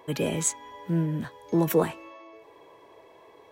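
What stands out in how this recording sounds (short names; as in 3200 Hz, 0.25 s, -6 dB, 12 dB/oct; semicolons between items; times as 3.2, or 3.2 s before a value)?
noise floor -54 dBFS; spectral tilt -5.5 dB/oct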